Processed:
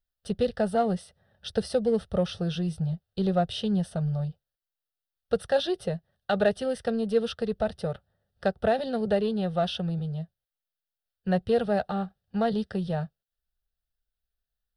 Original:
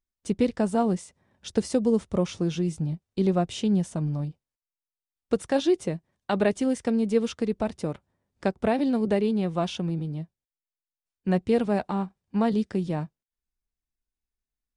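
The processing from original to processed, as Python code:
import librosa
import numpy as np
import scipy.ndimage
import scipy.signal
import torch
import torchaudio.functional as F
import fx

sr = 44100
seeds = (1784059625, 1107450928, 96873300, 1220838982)

p1 = fx.fixed_phaser(x, sr, hz=1500.0, stages=8)
p2 = 10.0 ** (-31.0 / 20.0) * np.tanh(p1 / 10.0 ** (-31.0 / 20.0))
p3 = p1 + (p2 * 10.0 ** (-11.5 / 20.0))
y = p3 * 10.0 ** (2.0 / 20.0)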